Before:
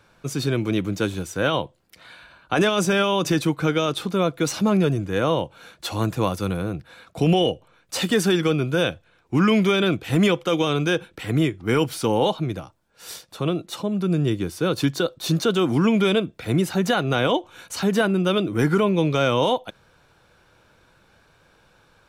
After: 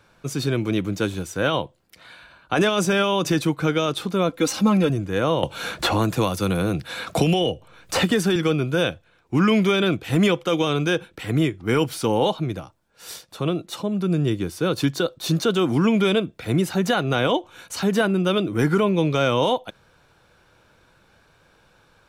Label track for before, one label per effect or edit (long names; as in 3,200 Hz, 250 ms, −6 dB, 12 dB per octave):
4.290000	4.900000	comb filter 3.8 ms
5.430000	8.360000	multiband upward and downward compressor depth 100%